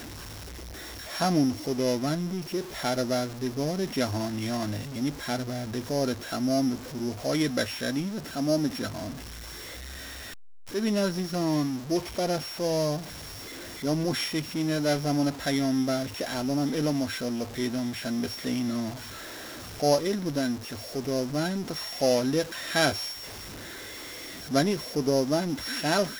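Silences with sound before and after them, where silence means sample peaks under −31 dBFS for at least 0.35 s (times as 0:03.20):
0:09.10–0:10.74
0:12.99–0:13.83
0:18.90–0:19.80
0:23.12–0:24.51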